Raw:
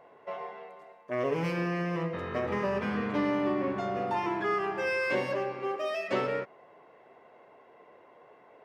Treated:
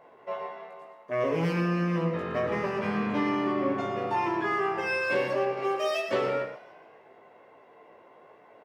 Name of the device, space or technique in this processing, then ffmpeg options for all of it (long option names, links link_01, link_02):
slapback doubling: -filter_complex "[0:a]asettb=1/sr,asplit=3[link_01][link_02][link_03];[link_01]atrim=end=5.574[link_04];[link_02]atrim=start=5.57:end=6,asetpts=PTS-STARTPTS,afade=type=in:duration=0.004:curve=qsin,afade=type=out:start_time=0.426:duration=0.004:curve=qsin,highshelf=frequency=3300:gain=10.5[link_05];[link_03]atrim=start=5.996[link_06];[link_04][link_05]acrossfade=duration=0.004:curve1=hsin:curve2=qsin[link_07];[link_07][link_06]acrossfade=duration=0.004:curve1=qsin:curve2=hsin,asplit=6[link_08][link_09][link_10][link_11][link_12][link_13];[link_09]adelay=143,afreqshift=59,volume=-20.5dB[link_14];[link_10]adelay=286,afreqshift=118,volume=-25.2dB[link_15];[link_11]adelay=429,afreqshift=177,volume=-30dB[link_16];[link_12]adelay=572,afreqshift=236,volume=-34.7dB[link_17];[link_13]adelay=715,afreqshift=295,volume=-39.4dB[link_18];[link_08][link_14][link_15][link_16][link_17][link_18]amix=inputs=6:normalize=0,asplit=3[link_19][link_20][link_21];[link_20]adelay=18,volume=-3dB[link_22];[link_21]adelay=115,volume=-9dB[link_23];[link_19][link_22][link_23]amix=inputs=3:normalize=0"